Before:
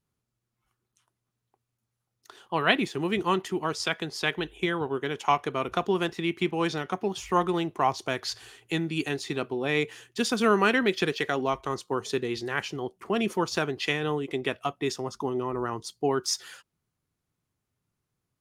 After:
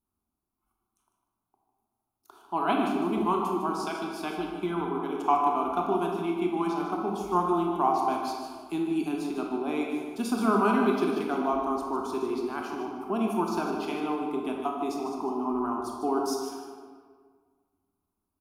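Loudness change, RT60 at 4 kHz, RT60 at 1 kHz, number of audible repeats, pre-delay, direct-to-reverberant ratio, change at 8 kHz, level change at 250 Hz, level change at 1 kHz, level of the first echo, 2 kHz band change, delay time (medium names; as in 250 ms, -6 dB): -0.5 dB, 1.0 s, 1.7 s, 1, 21 ms, -1.0 dB, -7.5 dB, +2.0 dB, +2.5 dB, -9.0 dB, -9.5 dB, 151 ms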